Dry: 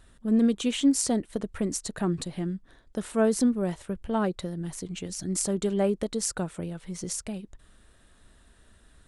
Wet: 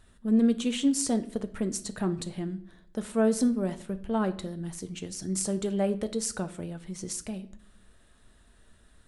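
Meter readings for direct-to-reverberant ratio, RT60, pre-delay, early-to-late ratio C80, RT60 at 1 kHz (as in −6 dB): 9.5 dB, 0.60 s, 5 ms, 19.5 dB, 0.55 s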